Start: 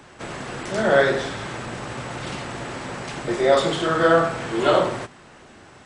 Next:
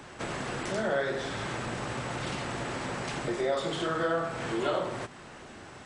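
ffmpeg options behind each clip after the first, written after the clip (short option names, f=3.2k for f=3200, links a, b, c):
-af "acompressor=threshold=-32dB:ratio=2.5"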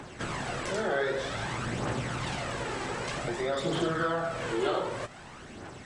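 -af "aphaser=in_gain=1:out_gain=1:delay=2.6:decay=0.44:speed=0.53:type=triangular"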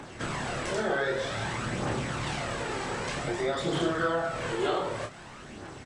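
-filter_complex "[0:a]asplit=2[a][b];[b]adelay=28,volume=-5dB[c];[a][c]amix=inputs=2:normalize=0"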